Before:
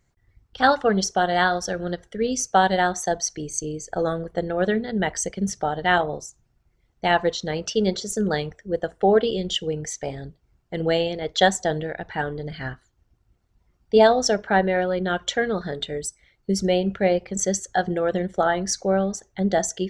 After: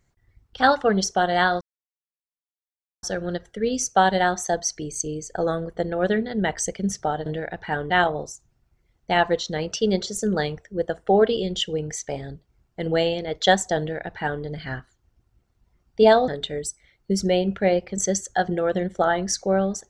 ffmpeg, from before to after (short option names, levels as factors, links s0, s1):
-filter_complex "[0:a]asplit=5[s0][s1][s2][s3][s4];[s0]atrim=end=1.61,asetpts=PTS-STARTPTS,afade=t=out:st=1.606:d=0.004:c=hsin,apad=pad_dur=1.42[s5];[s1]atrim=start=1.61:end=5.842,asetpts=PTS-STARTPTS,afade=t=in:d=0.004:c=hsin[s6];[s2]atrim=start=11.728:end=12.372[s7];[s3]atrim=start=5.838:end=14.222[s8];[s4]atrim=start=15.668[s9];[s5][s6]concat=n=2:v=0:a=1[s10];[s10][s7]acrossfade=d=0.004:c1=hsin:c2=hsin[s11];[s11][s8]acrossfade=d=0.004:c1=hsin:c2=hsin[s12];[s12][s9]acrossfade=d=0.004:c1=hsin:c2=hsin"